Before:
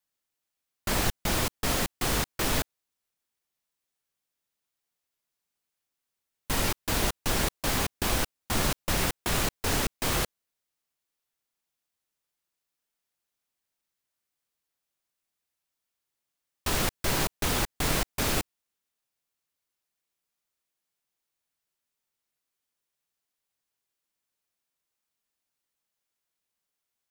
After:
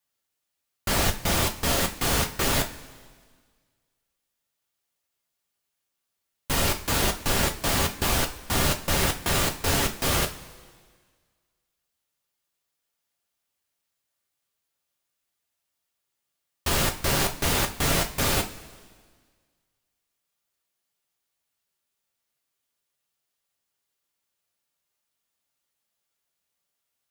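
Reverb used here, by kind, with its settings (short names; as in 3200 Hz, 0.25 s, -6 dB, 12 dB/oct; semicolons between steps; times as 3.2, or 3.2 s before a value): two-slope reverb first 0.26 s, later 1.7 s, from -18 dB, DRR 3 dB; gain +2 dB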